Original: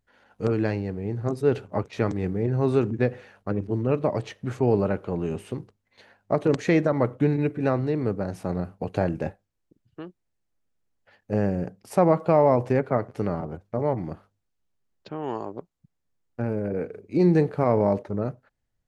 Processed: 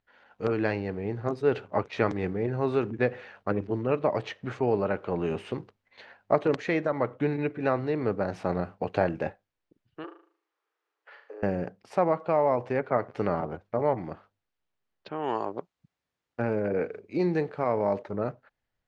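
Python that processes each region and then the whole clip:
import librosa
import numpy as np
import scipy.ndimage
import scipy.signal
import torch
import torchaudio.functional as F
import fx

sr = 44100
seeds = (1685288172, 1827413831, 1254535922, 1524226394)

y = fx.chain(x, sr, fx.over_compress(threshold_db=-36.0, ratio=-1.0),
    fx.cheby_ripple_highpass(hz=300.0, ripple_db=9),
    fx.room_flutter(wall_m=6.5, rt60_s=0.48), at=(10.04, 11.43))
y = fx.chain(y, sr, fx.highpass(hz=41.0, slope=12),
    fx.high_shelf(hz=4500.0, db=5.0), at=(15.19, 18.13))
y = scipy.signal.sosfilt(scipy.signal.butter(2, 3700.0, 'lowpass', fs=sr, output='sos'), y)
y = fx.low_shelf(y, sr, hz=360.0, db=-11.5)
y = fx.rider(y, sr, range_db=4, speed_s=0.5)
y = y * 10.0 ** (2.0 / 20.0)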